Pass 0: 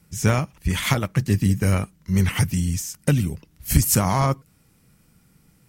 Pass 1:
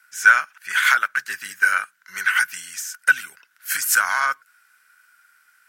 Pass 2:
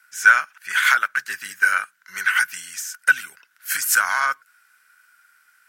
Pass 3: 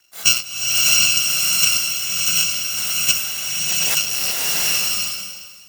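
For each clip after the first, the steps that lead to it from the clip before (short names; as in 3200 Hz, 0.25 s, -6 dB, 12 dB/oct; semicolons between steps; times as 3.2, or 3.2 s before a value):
resonant high-pass 1500 Hz, resonance Q 15
nothing audible
FFT order left unsorted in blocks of 128 samples; bloom reverb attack 0.77 s, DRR -4 dB; gain -2.5 dB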